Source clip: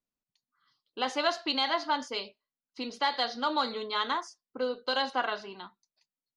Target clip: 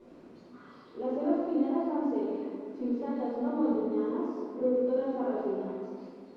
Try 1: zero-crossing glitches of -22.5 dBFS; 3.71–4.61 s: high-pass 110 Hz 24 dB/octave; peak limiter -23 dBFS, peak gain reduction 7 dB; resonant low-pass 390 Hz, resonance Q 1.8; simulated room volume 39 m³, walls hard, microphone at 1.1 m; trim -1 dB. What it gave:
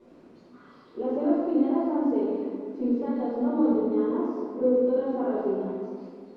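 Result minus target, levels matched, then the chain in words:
zero-crossing glitches: distortion -6 dB
zero-crossing glitches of -16 dBFS; 3.71–4.61 s: high-pass 110 Hz 24 dB/octave; peak limiter -23 dBFS, peak gain reduction 10 dB; resonant low-pass 390 Hz, resonance Q 1.8; simulated room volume 39 m³, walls hard, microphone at 1.1 m; trim -1 dB

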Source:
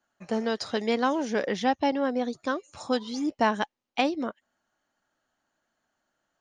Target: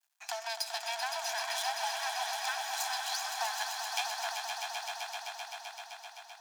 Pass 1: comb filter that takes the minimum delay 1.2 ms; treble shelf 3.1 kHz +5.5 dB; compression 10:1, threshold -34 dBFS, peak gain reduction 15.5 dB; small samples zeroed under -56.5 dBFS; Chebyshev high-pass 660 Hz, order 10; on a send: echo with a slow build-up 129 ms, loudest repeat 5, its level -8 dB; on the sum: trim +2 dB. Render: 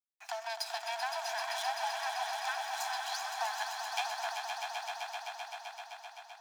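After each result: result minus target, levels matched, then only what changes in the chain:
small samples zeroed: distortion +7 dB; 8 kHz band -4.0 dB
change: small samples zeroed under -66.5 dBFS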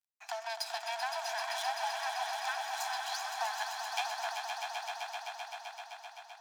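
8 kHz band -4.0 dB
change: treble shelf 3.1 kHz +15.5 dB

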